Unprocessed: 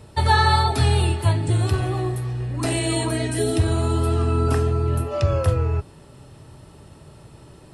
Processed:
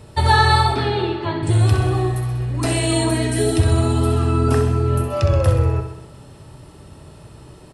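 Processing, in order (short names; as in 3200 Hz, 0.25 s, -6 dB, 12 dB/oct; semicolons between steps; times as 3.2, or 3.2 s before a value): 0.74–1.43 speaker cabinet 210–3900 Hz, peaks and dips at 370 Hz +7 dB, 690 Hz -4 dB, 2700 Hz -6 dB; feedback echo 64 ms, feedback 58%, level -8 dB; gain +2.5 dB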